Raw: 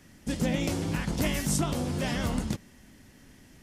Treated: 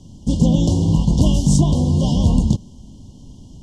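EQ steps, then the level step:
linear-phase brick-wall band-stop 1,100–2,800 Hz
low-pass with resonance 6,900 Hz, resonance Q 1.8
bass and treble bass +12 dB, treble −4 dB
+5.5 dB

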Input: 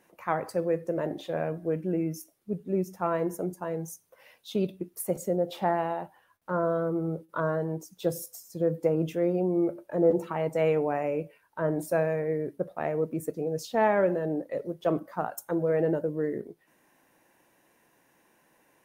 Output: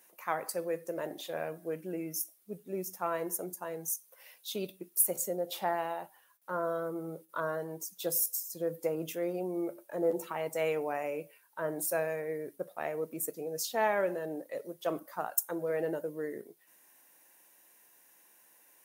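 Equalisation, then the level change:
RIAA equalisation recording
−4.0 dB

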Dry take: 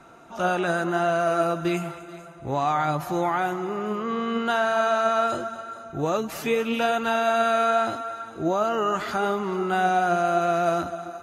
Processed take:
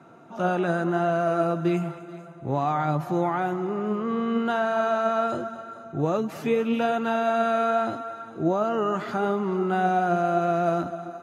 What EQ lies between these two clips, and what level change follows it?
high-pass filter 120 Hz 24 dB per octave
spectral tilt −2.5 dB per octave
−2.5 dB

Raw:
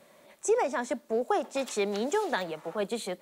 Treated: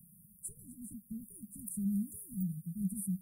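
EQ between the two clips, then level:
Chebyshev band-stop filter 190–9,500 Hz, order 5
parametric band 6,400 Hz −6.5 dB 0.86 octaves
+11.0 dB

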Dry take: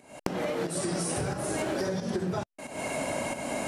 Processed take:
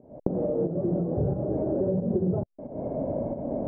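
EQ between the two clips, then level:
transistor ladder low-pass 660 Hz, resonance 40%
low-shelf EQ 220 Hz +11.5 dB
+6.5 dB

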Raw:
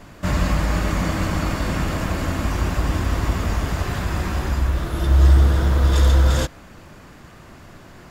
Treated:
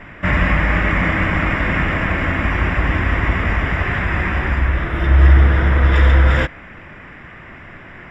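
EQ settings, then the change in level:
Savitzky-Golay smoothing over 25 samples
parametric band 2,000 Hz +13 dB 0.79 octaves
+3.0 dB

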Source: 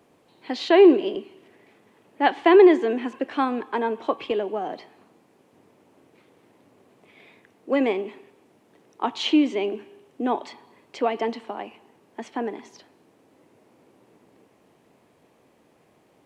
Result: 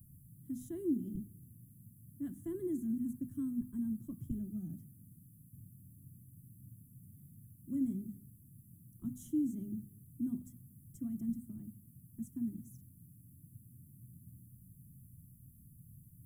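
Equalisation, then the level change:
inverse Chebyshev band-stop filter 430–4,700 Hz, stop band 60 dB
mains-hum notches 50/100/150/200/250 Hz
+18.0 dB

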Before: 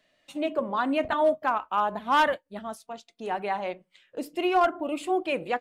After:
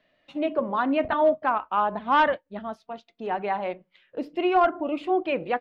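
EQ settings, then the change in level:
high-frequency loss of the air 270 metres
high-shelf EQ 8,100 Hz +4.5 dB
+3.0 dB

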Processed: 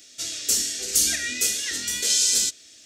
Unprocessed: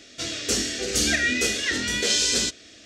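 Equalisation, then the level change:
first-order pre-emphasis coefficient 0.8
high-shelf EQ 9,100 Hz +11.5 dB
+2.0 dB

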